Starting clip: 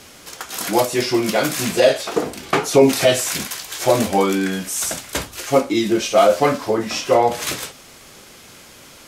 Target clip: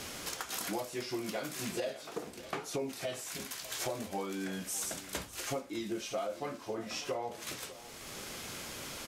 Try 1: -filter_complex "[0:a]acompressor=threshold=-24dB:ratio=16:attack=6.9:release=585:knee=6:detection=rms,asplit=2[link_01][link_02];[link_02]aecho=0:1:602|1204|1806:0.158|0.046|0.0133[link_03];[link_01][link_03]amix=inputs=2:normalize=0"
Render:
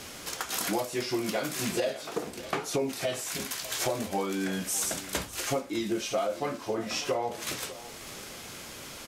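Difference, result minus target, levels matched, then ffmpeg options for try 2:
downward compressor: peak gain reduction −7 dB
-filter_complex "[0:a]acompressor=threshold=-31.5dB:ratio=16:attack=6.9:release=585:knee=6:detection=rms,asplit=2[link_01][link_02];[link_02]aecho=0:1:602|1204|1806:0.158|0.046|0.0133[link_03];[link_01][link_03]amix=inputs=2:normalize=0"

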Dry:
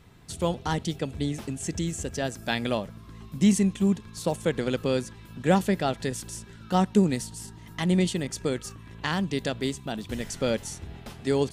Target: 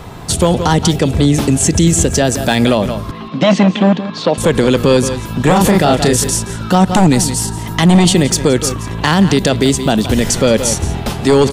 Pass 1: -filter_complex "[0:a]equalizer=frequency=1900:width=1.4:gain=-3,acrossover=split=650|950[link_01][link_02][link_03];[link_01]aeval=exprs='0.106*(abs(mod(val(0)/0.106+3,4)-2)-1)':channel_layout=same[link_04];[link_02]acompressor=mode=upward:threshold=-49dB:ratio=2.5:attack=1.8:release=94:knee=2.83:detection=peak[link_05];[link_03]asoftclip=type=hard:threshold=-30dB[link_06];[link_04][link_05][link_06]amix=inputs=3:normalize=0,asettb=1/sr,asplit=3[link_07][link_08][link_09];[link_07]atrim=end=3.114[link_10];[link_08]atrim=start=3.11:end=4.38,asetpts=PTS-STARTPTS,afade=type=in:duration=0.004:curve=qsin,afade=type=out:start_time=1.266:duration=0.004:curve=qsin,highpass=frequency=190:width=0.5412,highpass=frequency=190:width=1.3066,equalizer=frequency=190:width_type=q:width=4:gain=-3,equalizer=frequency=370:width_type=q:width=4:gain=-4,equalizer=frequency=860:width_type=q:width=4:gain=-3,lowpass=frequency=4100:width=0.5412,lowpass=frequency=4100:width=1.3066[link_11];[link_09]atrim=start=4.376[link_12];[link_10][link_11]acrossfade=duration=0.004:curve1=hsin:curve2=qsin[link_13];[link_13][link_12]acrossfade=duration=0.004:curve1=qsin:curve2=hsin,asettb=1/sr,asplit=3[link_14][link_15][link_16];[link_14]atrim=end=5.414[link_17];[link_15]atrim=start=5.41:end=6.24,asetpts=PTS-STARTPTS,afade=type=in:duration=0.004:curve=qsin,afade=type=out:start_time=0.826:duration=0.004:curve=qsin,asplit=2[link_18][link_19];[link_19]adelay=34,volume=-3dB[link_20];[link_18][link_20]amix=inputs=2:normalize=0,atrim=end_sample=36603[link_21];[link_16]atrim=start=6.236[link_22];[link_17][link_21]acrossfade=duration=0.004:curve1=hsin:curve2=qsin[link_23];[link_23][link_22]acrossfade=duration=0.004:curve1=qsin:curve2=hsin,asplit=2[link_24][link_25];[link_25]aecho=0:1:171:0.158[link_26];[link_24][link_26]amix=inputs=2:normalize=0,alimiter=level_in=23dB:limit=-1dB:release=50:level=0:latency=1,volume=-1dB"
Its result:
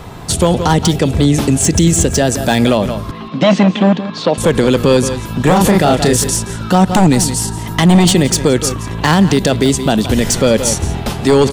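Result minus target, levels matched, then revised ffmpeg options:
hard clipping: distortion +9 dB
-filter_complex "[0:a]equalizer=frequency=1900:width=1.4:gain=-3,acrossover=split=650|950[link_01][link_02][link_03];[link_01]aeval=exprs='0.106*(abs(mod(val(0)/0.106+3,4)-2)-1)':channel_layout=same[link_04];[link_02]acompressor=mode=upward:threshold=-49dB:ratio=2.5:attack=1.8:release=94:knee=2.83:detection=peak[link_05];[link_03]asoftclip=type=hard:threshold=-23.5dB[link_06];[link_04][link_05][link_06]amix=inputs=3:normalize=0,asettb=1/sr,asplit=3[link_07][link_08][link_09];[link_07]atrim=end=3.114[link_10];[link_08]atrim=start=3.11:end=4.38,asetpts=PTS-STARTPTS,afade=type=in:duration=0.004:curve=qsin,afade=type=out:start_time=1.266:duration=0.004:curve=qsin,highpass=frequency=190:width=0.5412,highpass=frequency=190:width=1.3066,equalizer=frequency=190:width_type=q:width=4:gain=-3,equalizer=frequency=370:width_type=q:width=4:gain=-4,equalizer=frequency=860:width_type=q:width=4:gain=-3,lowpass=frequency=4100:width=0.5412,lowpass=frequency=4100:width=1.3066[link_11];[link_09]atrim=start=4.376[link_12];[link_10][link_11]acrossfade=duration=0.004:curve1=hsin:curve2=qsin[link_13];[link_13][link_12]acrossfade=duration=0.004:curve1=qsin:curve2=hsin,asettb=1/sr,asplit=3[link_14][link_15][link_16];[link_14]atrim=end=5.414[link_17];[link_15]atrim=start=5.41:end=6.24,asetpts=PTS-STARTPTS,afade=type=in:duration=0.004:curve=qsin,afade=type=out:start_time=0.826:duration=0.004:curve=qsin,asplit=2[link_18][link_19];[link_19]adelay=34,volume=-3dB[link_20];[link_18][link_20]amix=inputs=2:normalize=0,atrim=end_sample=36603[link_21];[link_16]atrim=start=6.236[link_22];[link_17][link_21]acrossfade=duration=0.004:curve1=hsin:curve2=qsin[link_23];[link_23][link_22]acrossfade=duration=0.004:curve1=qsin:curve2=hsin,asplit=2[link_24][link_25];[link_25]aecho=0:1:171:0.158[link_26];[link_24][link_26]amix=inputs=2:normalize=0,alimiter=level_in=23dB:limit=-1dB:release=50:level=0:latency=1,volume=-1dB"

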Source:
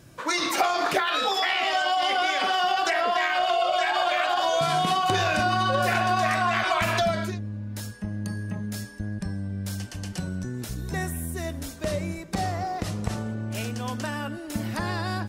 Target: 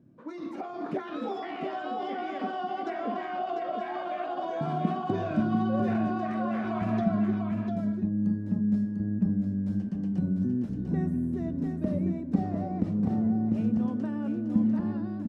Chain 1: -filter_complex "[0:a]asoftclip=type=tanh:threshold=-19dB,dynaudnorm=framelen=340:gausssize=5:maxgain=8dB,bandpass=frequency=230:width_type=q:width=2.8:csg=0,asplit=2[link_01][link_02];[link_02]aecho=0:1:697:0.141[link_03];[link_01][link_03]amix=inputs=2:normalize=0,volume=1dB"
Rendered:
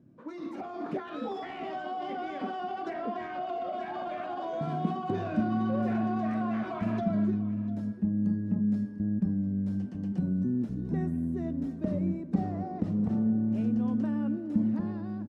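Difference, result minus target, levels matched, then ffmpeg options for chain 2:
soft clipping: distortion +15 dB; echo-to-direct −11.5 dB
-filter_complex "[0:a]asoftclip=type=tanh:threshold=-9.5dB,dynaudnorm=framelen=340:gausssize=5:maxgain=8dB,bandpass=frequency=230:width_type=q:width=2.8:csg=0,asplit=2[link_01][link_02];[link_02]aecho=0:1:697:0.531[link_03];[link_01][link_03]amix=inputs=2:normalize=0,volume=1dB"

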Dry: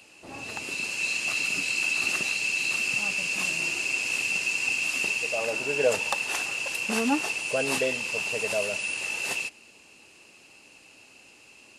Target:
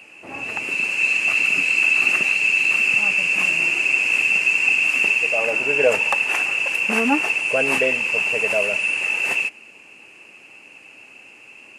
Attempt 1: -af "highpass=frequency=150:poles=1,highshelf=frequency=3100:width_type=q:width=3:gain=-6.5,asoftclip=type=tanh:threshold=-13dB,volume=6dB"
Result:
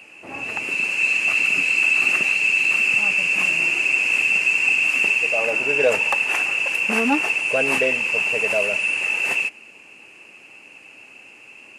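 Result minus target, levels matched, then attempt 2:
soft clipping: distortion +21 dB
-af "highpass=frequency=150:poles=1,highshelf=frequency=3100:width_type=q:width=3:gain=-6.5,asoftclip=type=tanh:threshold=-1.5dB,volume=6dB"

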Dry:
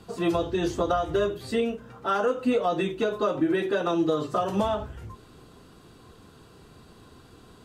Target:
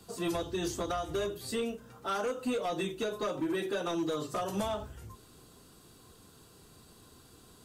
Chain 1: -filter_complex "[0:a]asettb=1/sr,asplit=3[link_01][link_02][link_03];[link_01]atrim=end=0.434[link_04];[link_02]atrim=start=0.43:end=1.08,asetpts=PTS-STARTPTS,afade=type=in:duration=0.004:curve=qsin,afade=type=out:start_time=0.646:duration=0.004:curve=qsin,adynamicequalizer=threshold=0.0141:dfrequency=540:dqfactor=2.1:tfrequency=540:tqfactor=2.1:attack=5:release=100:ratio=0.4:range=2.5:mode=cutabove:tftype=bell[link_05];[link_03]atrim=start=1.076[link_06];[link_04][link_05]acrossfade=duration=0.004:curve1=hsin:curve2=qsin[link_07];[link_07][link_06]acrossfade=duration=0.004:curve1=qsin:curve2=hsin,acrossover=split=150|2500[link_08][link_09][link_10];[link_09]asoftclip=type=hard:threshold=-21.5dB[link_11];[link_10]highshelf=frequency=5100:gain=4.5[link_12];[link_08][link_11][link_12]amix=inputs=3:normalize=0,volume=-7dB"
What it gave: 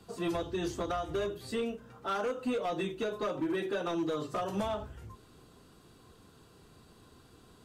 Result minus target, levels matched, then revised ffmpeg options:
8,000 Hz band −7.0 dB
-filter_complex "[0:a]asettb=1/sr,asplit=3[link_01][link_02][link_03];[link_01]atrim=end=0.434[link_04];[link_02]atrim=start=0.43:end=1.08,asetpts=PTS-STARTPTS,afade=type=in:duration=0.004:curve=qsin,afade=type=out:start_time=0.646:duration=0.004:curve=qsin,adynamicequalizer=threshold=0.0141:dfrequency=540:dqfactor=2.1:tfrequency=540:tqfactor=2.1:attack=5:release=100:ratio=0.4:range=2.5:mode=cutabove:tftype=bell[link_05];[link_03]atrim=start=1.076[link_06];[link_04][link_05]acrossfade=duration=0.004:curve1=hsin:curve2=qsin[link_07];[link_07][link_06]acrossfade=duration=0.004:curve1=qsin:curve2=hsin,acrossover=split=150|2500[link_08][link_09][link_10];[link_09]asoftclip=type=hard:threshold=-21.5dB[link_11];[link_10]highshelf=frequency=5100:gain=15.5[link_12];[link_08][link_11][link_12]amix=inputs=3:normalize=0,volume=-7dB"

